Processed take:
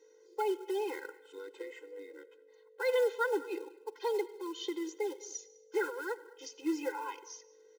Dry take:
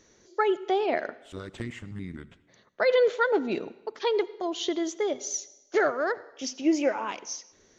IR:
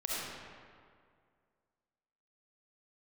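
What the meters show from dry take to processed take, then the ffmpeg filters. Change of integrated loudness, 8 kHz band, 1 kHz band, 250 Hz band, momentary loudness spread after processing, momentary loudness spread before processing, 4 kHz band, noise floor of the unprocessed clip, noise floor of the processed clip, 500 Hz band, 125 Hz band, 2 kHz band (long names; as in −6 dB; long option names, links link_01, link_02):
−8.5 dB, can't be measured, −9.0 dB, −9.5 dB, 17 LU, 15 LU, −10.0 dB, −62 dBFS, −61 dBFS, −8.0 dB, below −35 dB, −8.5 dB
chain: -filter_complex "[0:a]highshelf=frequency=4700:gain=-4.5,asplit=2[link_01][link_02];[link_02]adelay=204.1,volume=-22dB,highshelf=frequency=4000:gain=-4.59[link_03];[link_01][link_03]amix=inputs=2:normalize=0,aeval=exprs='val(0)+0.002*(sin(2*PI*50*n/s)+sin(2*PI*2*50*n/s)/2+sin(2*PI*3*50*n/s)/3+sin(2*PI*4*50*n/s)/4+sin(2*PI*5*50*n/s)/5)':channel_layout=same,acrossover=split=260|2300[link_04][link_05][link_06];[link_04]afreqshift=390[link_07];[link_05]acrusher=bits=4:mode=log:mix=0:aa=0.000001[link_08];[link_07][link_08][link_06]amix=inputs=3:normalize=0,asoftclip=type=tanh:threshold=-14dB,afftfilt=real='re*eq(mod(floor(b*sr/1024/270),2),1)':imag='im*eq(mod(floor(b*sr/1024/270),2),1)':win_size=1024:overlap=0.75,volume=-5.5dB"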